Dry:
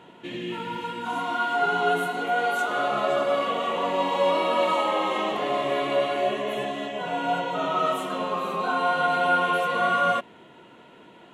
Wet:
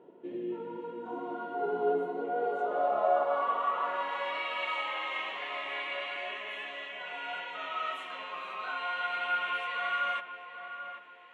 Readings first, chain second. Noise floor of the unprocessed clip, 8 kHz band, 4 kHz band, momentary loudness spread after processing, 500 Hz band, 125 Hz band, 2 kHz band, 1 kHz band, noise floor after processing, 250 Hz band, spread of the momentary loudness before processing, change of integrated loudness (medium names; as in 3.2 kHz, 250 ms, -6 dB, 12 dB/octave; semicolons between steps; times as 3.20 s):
-50 dBFS, under -20 dB, -7.5 dB, 11 LU, -8.5 dB, under -15 dB, -6.5 dB, -8.5 dB, -49 dBFS, -11.5 dB, 8 LU, -8.5 dB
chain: filtered feedback delay 787 ms, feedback 44%, low-pass 1.6 kHz, level -8.5 dB; band-pass sweep 410 Hz -> 2.2 kHz, 2.34–4.49 s